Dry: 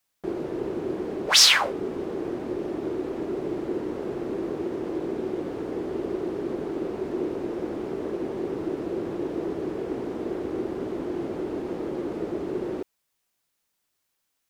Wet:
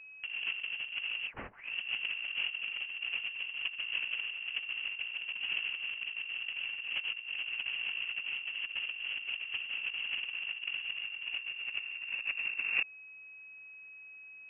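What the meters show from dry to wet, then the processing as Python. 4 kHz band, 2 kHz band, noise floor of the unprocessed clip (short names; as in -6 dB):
-9.0 dB, +0.5 dB, -77 dBFS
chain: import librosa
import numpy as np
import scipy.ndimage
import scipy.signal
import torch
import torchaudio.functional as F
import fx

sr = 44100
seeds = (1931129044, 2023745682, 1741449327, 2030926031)

y = fx.filter_sweep_highpass(x, sr, from_hz=82.0, to_hz=870.0, start_s=9.78, end_s=13.61, q=1.2)
y = y + 10.0 ** (-57.0 / 20.0) * np.sin(2.0 * np.pi * 550.0 * np.arange(len(y)) / sr)
y = fx.freq_invert(y, sr, carrier_hz=3100)
y = fx.over_compress(y, sr, threshold_db=-36.0, ratio=-0.5)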